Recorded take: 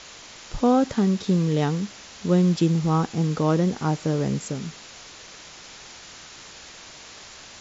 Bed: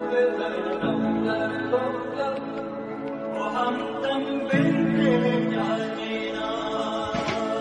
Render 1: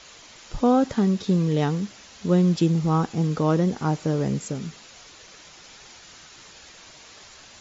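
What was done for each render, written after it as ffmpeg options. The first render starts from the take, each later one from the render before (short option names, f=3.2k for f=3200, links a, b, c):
-af "afftdn=nr=6:nf=-44"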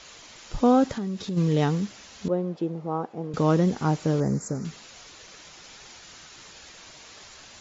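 -filter_complex "[0:a]asplit=3[a][b][c];[a]afade=t=out:st=0.96:d=0.02[d];[b]acompressor=threshold=-30dB:ratio=3:attack=3.2:release=140:knee=1:detection=peak,afade=t=in:st=0.96:d=0.02,afade=t=out:st=1.36:d=0.02[e];[c]afade=t=in:st=1.36:d=0.02[f];[d][e][f]amix=inputs=3:normalize=0,asettb=1/sr,asplit=3[g][h][i];[g]atrim=end=2.284[j];[h]atrim=start=2.28:end=3.34,asetpts=PTS-STARTPTS,afade=t=in:d=0.004:c=qsin,afade=t=out:st=1.056:d=0.004:c=qsin,bandpass=f=590:t=q:w=1.4[k];[i]atrim=start=3.336[l];[j][k]acrossfade=d=0.004:c1=hsin:c2=qsin[m];[m][l]acrossfade=d=0.004:c1=qsin:c2=hsin,asettb=1/sr,asplit=3[n][o][p];[n]atrim=end=4.204[q];[o]atrim=start=4.2:end=4.65,asetpts=PTS-STARTPTS,afade=t=in:d=0.004:c=qsin,afade=t=out:st=0.446:d=0.004:c=qsin,asuperstop=centerf=3100:order=4:qfactor=0.88[r];[p]atrim=start=4.646[s];[q][r]acrossfade=d=0.004:c1=hsin:c2=qsin[t];[t][s]acrossfade=d=0.004:c1=qsin:c2=hsin"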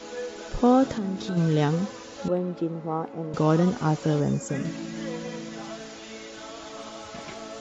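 -filter_complex "[1:a]volume=-13dB[a];[0:a][a]amix=inputs=2:normalize=0"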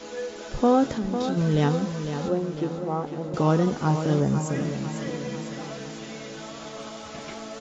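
-filter_complex "[0:a]asplit=2[a][b];[b]adelay=14,volume=-12dB[c];[a][c]amix=inputs=2:normalize=0,aecho=1:1:501|1002|1503|2004|2505|3006:0.355|0.192|0.103|0.0559|0.0302|0.0163"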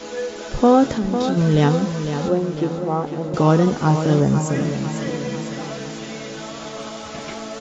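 -af "volume=6dB"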